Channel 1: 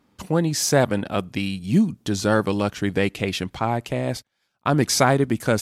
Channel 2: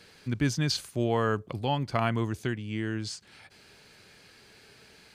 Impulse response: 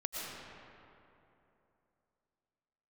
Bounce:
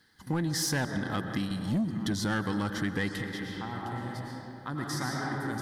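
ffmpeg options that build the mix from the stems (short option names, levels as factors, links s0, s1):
-filter_complex "[0:a]volume=0.75,asplit=2[s0][s1];[s1]volume=0.282[s2];[1:a]alimiter=level_in=1.06:limit=0.0631:level=0:latency=1,volume=0.944,acrusher=bits=10:mix=0:aa=0.000001,volume=0.211,asplit=3[s3][s4][s5];[s4]volume=0.422[s6];[s5]apad=whole_len=247677[s7];[s0][s7]sidechaingate=range=0.0224:threshold=0.00141:ratio=16:detection=peak[s8];[2:a]atrim=start_sample=2205[s9];[s2][s6]amix=inputs=2:normalize=0[s10];[s10][s9]afir=irnorm=-1:irlink=0[s11];[s8][s3][s11]amix=inputs=3:normalize=0,superequalizer=7b=0.447:8b=0.316:11b=1.78:12b=0.251:15b=0.631,asoftclip=type=tanh:threshold=0.141,acompressor=threshold=0.0355:ratio=2.5"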